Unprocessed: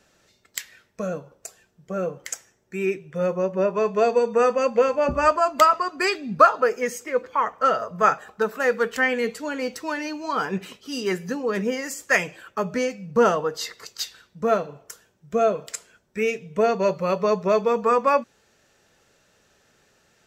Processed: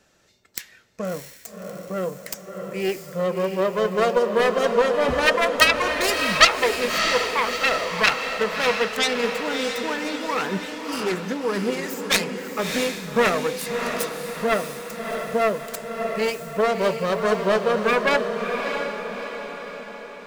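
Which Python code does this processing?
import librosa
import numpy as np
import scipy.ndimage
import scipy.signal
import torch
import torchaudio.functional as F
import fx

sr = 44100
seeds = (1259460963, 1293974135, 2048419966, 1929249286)

y = fx.self_delay(x, sr, depth_ms=0.66)
y = fx.echo_diffused(y, sr, ms=643, feedback_pct=53, wet_db=-5.5)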